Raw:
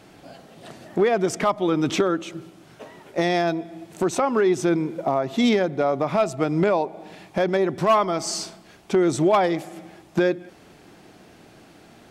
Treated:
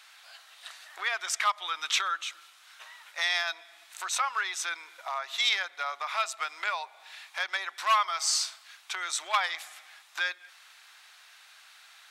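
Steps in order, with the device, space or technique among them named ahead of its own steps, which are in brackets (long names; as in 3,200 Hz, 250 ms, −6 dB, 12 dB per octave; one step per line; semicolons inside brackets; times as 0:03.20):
headphones lying on a table (high-pass filter 1,200 Hz 24 dB per octave; parametric band 3,800 Hz +6 dB 0.21 octaves)
level +1.5 dB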